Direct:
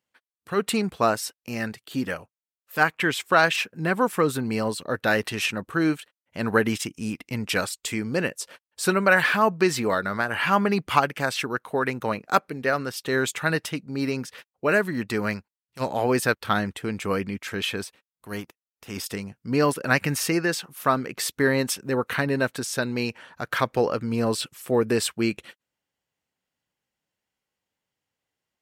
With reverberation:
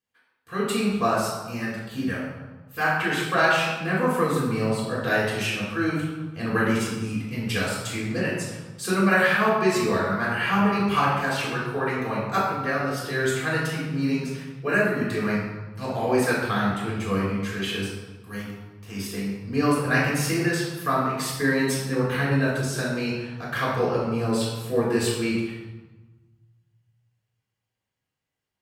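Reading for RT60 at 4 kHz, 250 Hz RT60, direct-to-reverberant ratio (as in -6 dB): 0.85 s, 1.8 s, -6.0 dB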